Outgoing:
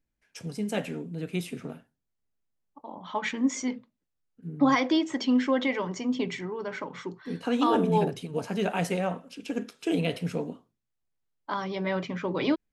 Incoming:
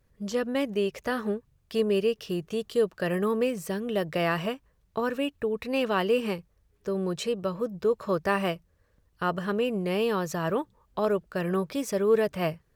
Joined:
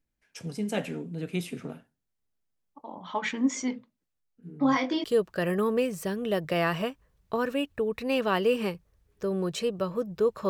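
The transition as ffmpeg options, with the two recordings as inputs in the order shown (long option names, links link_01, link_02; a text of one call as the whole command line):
ffmpeg -i cue0.wav -i cue1.wav -filter_complex "[0:a]asplit=3[link_01][link_02][link_03];[link_01]afade=type=out:start_time=4.19:duration=0.02[link_04];[link_02]flanger=delay=20:depth=3.2:speed=0.5,afade=type=in:start_time=4.19:duration=0.02,afade=type=out:start_time=5.04:duration=0.02[link_05];[link_03]afade=type=in:start_time=5.04:duration=0.02[link_06];[link_04][link_05][link_06]amix=inputs=3:normalize=0,apad=whole_dur=10.49,atrim=end=10.49,atrim=end=5.042[link_07];[1:a]atrim=start=2.678:end=8.13[link_08];[link_07][link_08]acrossfade=duration=0.004:curve1=hsin:curve2=hsin" out.wav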